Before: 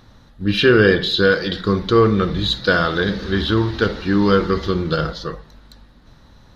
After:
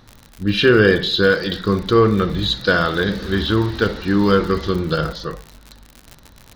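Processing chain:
surface crackle 82 per second −26 dBFS

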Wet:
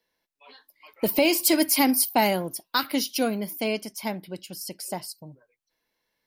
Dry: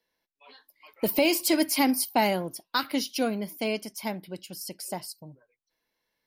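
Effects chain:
0:01.38–0:03.61: high-shelf EQ 9,800 Hz +8 dB
level +2 dB

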